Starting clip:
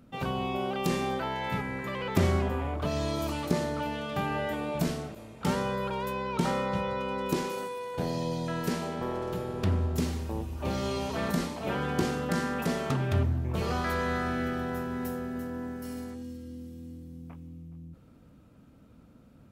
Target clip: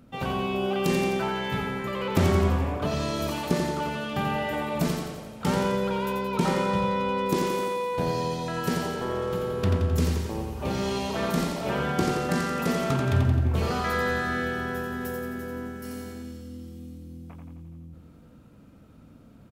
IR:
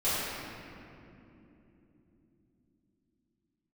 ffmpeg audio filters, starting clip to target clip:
-af "aecho=1:1:87|174|261|348|435|522|609|696:0.562|0.326|0.189|0.11|0.0636|0.0369|0.0214|0.0124,volume=1.33"

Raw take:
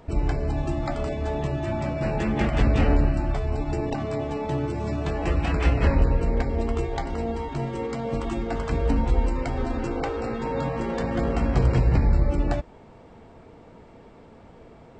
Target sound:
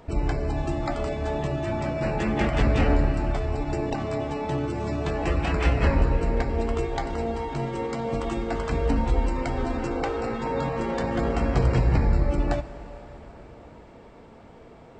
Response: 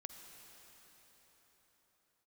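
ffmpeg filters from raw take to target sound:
-filter_complex "[0:a]asplit=2[s0][s1];[1:a]atrim=start_sample=2205,lowshelf=f=220:g=-9.5[s2];[s1][s2]afir=irnorm=-1:irlink=0,volume=1.41[s3];[s0][s3]amix=inputs=2:normalize=0,volume=0.668"

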